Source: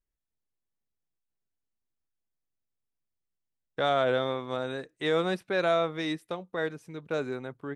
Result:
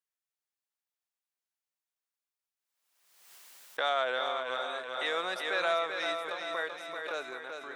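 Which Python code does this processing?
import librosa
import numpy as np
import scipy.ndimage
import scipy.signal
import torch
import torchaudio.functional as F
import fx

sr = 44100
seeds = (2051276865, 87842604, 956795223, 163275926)

p1 = scipy.signal.sosfilt(scipy.signal.butter(2, 830.0, 'highpass', fs=sr, output='sos'), x)
p2 = p1 + fx.echo_feedback(p1, sr, ms=386, feedback_pct=55, wet_db=-6.0, dry=0)
y = fx.pre_swell(p2, sr, db_per_s=51.0)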